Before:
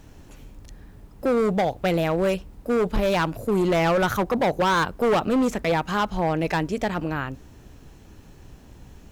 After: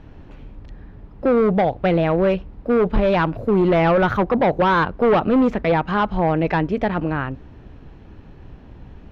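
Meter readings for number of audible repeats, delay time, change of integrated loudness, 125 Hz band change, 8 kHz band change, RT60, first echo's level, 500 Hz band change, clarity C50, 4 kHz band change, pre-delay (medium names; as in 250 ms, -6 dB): no echo, no echo, +4.5 dB, +5.5 dB, under -15 dB, no reverb, no echo, +4.5 dB, no reverb, -2.0 dB, no reverb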